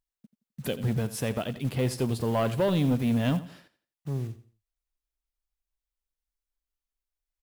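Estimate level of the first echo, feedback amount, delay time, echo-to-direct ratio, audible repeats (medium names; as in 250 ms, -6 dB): -15.0 dB, 30%, 86 ms, -14.5 dB, 2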